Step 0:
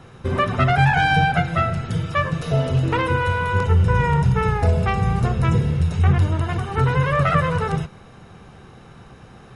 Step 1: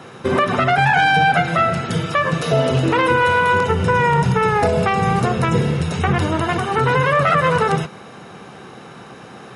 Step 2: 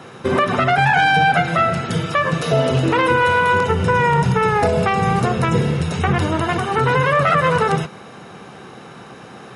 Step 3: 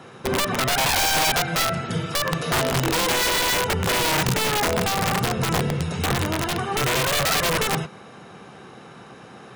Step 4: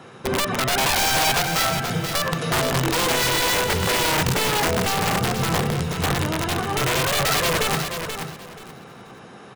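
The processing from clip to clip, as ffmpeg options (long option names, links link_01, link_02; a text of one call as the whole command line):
ffmpeg -i in.wav -af "highpass=210,alimiter=limit=-15.5dB:level=0:latency=1:release=102,volume=9dB" out.wav
ffmpeg -i in.wav -af anull out.wav
ffmpeg -i in.wav -af "aeval=exprs='(mod(3.16*val(0)+1,2)-1)/3.16':channel_layout=same,volume=-5dB" out.wav
ffmpeg -i in.wav -af "aecho=1:1:480|960|1440:0.422|0.0928|0.0204" out.wav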